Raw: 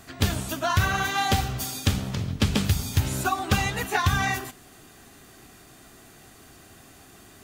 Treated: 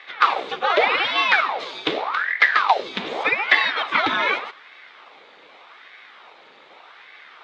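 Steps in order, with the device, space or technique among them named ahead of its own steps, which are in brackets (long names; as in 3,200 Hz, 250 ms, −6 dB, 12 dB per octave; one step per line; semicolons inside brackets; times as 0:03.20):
voice changer toy (ring modulator whose carrier an LFO sweeps 1,000 Hz, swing 90%, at 0.84 Hz; loudspeaker in its box 420–3,800 Hz, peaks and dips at 450 Hz +3 dB, 810 Hz +4 dB, 1,200 Hz +5 dB, 2,200 Hz +7 dB, 3,700 Hz +8 dB)
level +5 dB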